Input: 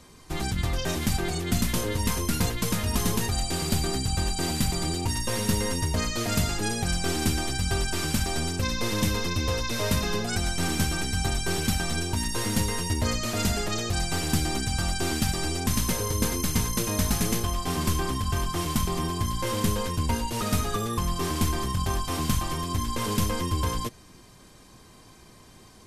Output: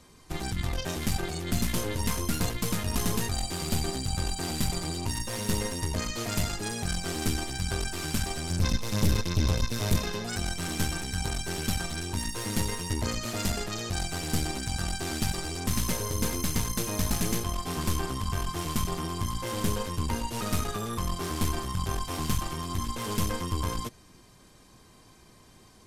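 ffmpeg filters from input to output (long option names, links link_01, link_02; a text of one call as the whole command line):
ffmpeg -i in.wav -filter_complex "[0:a]asettb=1/sr,asplit=3[link_01][link_02][link_03];[link_01]atrim=end=8.504[link_04];[link_02]atrim=start=8.5:end=9.96,asetpts=PTS-STARTPTS,afade=type=in:duration=0.004:curve=qsin,afade=type=out:start_time=1.456:duration=0.004:curve=qsin,bass=frequency=250:gain=10,treble=frequency=4000:gain=4[link_05];[link_03]atrim=start=9.956[link_06];[link_04][link_05]acrossfade=duration=0.004:curve1=hsin:curve2=qsin[link_07];[link_07][link_06]acrossfade=duration=0.004:curve1=qsin:curve2=hsin,aeval=exprs='(tanh(10*val(0)+0.7)-tanh(0.7))/10':channel_layout=same" out.wav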